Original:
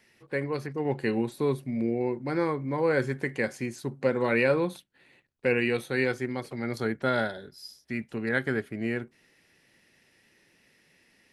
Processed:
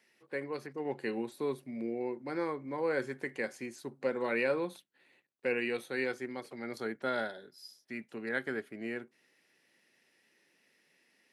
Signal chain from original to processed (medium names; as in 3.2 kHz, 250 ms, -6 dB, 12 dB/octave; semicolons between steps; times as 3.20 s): high-pass 240 Hz 12 dB/octave; trim -6.5 dB